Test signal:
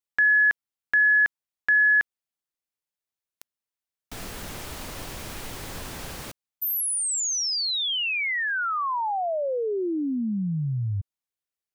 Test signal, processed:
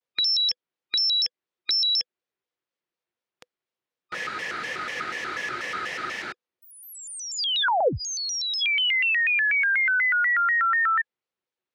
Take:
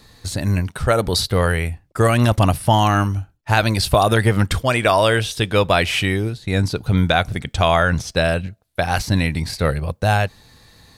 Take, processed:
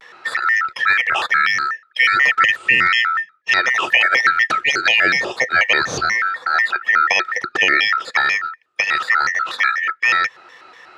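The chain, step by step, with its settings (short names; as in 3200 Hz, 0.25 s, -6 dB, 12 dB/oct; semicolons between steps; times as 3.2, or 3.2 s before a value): four-band scrambler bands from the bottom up 3142; bell 430 Hz +12 dB 0.26 oct; in parallel at +1.5 dB: compressor, threshold -26 dBFS; on the sum: dynamic EQ 270 Hz, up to -6 dB, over -39 dBFS, Q 1.3; BPF 120–3500 Hz; shaped vibrato square 4.1 Hz, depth 250 cents; gain -1 dB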